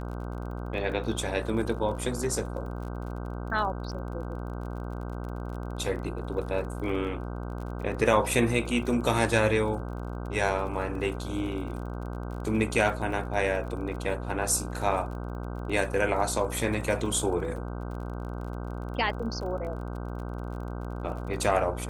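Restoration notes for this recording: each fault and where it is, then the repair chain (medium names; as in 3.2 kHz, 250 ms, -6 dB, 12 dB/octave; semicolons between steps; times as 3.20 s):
buzz 60 Hz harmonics 26 -35 dBFS
crackle 34 per s -38 dBFS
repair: de-click; de-hum 60 Hz, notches 26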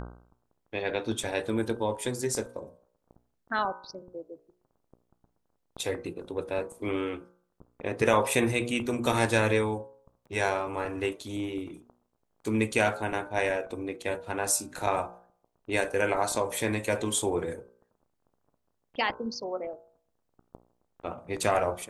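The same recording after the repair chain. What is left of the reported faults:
nothing left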